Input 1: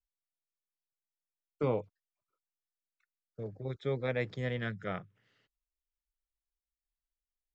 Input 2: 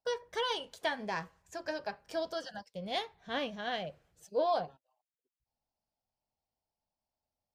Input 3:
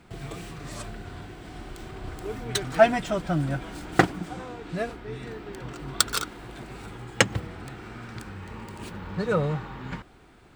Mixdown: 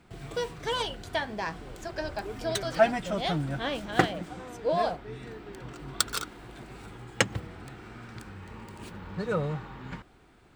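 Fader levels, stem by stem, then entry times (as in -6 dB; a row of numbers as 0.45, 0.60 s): -19.0, +3.0, -4.5 dB; 0.00, 0.30, 0.00 s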